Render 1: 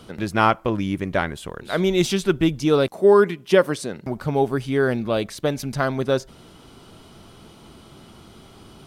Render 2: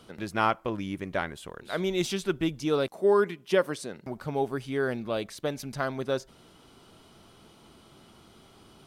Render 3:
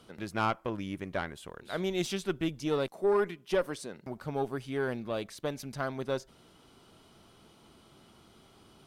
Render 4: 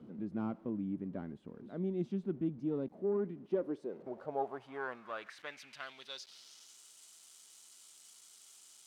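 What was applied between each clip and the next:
low shelf 230 Hz -5 dB; gain -7 dB
tube stage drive 15 dB, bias 0.45; gain -2 dB
zero-crossing step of -44 dBFS; band-pass sweep 230 Hz -> 7600 Hz, 3.35–6.82; gain +2 dB

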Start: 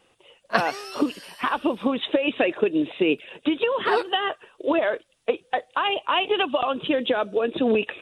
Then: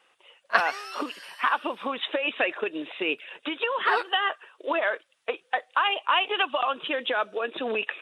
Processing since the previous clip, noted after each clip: HPF 640 Hz 6 dB/oct; bell 1500 Hz +9 dB 2.2 oct; gain -5.5 dB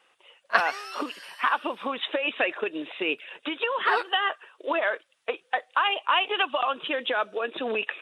nothing audible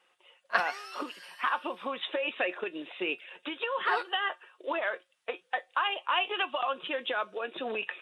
resonator 180 Hz, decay 0.16 s, harmonics all, mix 60%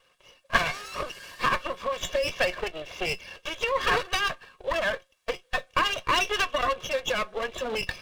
minimum comb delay 1.8 ms; gain +6 dB

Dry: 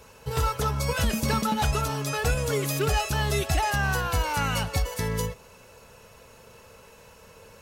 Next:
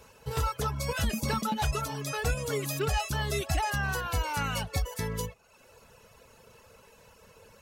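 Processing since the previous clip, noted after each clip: reverb removal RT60 0.69 s; gain -3.5 dB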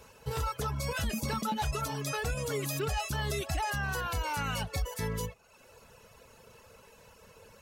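limiter -24 dBFS, peak gain reduction 5.5 dB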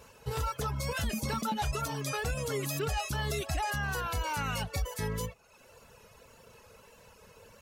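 wow and flutter 37 cents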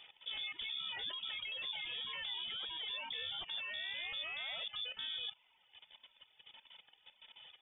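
level quantiser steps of 14 dB; air absorption 160 m; inverted band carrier 3500 Hz

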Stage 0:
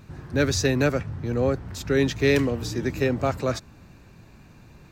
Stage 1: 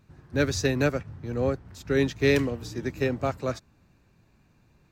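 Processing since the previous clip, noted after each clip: upward expander 1.5:1, over -40 dBFS; gain -1 dB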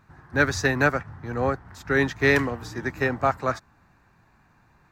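band shelf 1200 Hz +10.5 dB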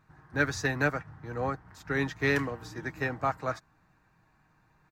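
comb 6.4 ms, depth 36%; gain -7 dB

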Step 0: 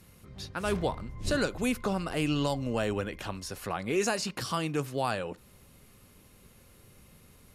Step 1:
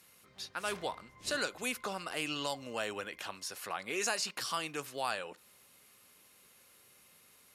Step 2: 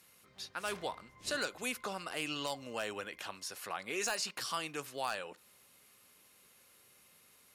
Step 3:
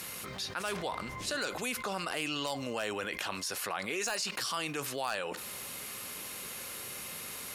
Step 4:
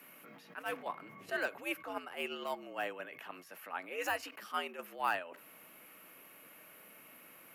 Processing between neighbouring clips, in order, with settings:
HPF 1200 Hz 6 dB/oct
wavefolder -23 dBFS; gain -1.5 dB
fast leveller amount 70%
frequency shift +82 Hz; gate -32 dBFS, range -18 dB; band shelf 5800 Hz -15 dB; gain +6.5 dB

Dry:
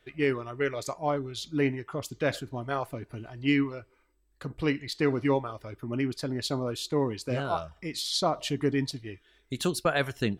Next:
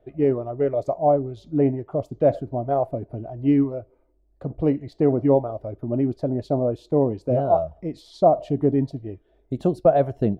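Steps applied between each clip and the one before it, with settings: EQ curve 450 Hz 0 dB, 660 Hz +8 dB, 1000 Hz -10 dB, 1600 Hz -20 dB, 11000 Hz -29 dB; gain +7 dB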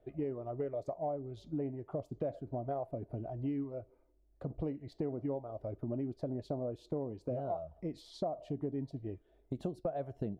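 compressor 6:1, threshold -28 dBFS, peak gain reduction 16.5 dB; gain -6.5 dB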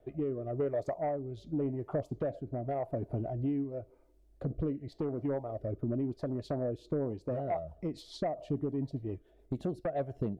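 sine folder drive 3 dB, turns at -24.5 dBFS; rotary speaker horn 0.9 Hz, later 7 Hz, at 6.75

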